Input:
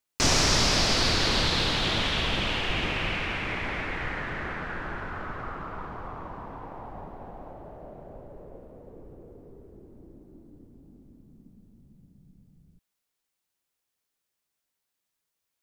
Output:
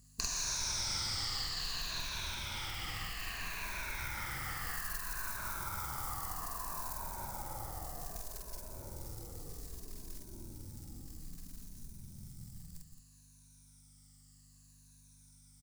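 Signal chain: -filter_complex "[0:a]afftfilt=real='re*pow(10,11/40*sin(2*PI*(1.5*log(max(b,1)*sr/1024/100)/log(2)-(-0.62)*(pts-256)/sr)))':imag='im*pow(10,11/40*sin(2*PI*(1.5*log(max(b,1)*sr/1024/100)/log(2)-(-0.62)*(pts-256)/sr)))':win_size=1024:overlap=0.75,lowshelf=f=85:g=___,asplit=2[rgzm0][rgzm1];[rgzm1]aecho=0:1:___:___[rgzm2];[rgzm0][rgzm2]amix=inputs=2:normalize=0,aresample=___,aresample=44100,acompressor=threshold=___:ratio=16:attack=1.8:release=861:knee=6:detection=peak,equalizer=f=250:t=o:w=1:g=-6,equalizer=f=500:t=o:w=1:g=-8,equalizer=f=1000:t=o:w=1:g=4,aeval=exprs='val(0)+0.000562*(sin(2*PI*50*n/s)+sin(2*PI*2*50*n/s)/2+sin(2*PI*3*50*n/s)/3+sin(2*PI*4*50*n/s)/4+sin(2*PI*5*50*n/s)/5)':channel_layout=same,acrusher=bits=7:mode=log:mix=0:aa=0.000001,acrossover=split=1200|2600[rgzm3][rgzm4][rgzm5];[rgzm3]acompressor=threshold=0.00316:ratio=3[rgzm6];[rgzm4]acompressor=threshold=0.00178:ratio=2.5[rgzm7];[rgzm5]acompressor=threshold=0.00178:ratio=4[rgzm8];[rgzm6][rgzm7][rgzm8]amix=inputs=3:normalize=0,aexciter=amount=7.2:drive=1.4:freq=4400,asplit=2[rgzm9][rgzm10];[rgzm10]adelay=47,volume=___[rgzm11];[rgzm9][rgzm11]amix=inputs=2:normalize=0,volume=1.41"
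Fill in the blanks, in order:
8.5, 171, 0.376, 22050, 0.0355, 0.794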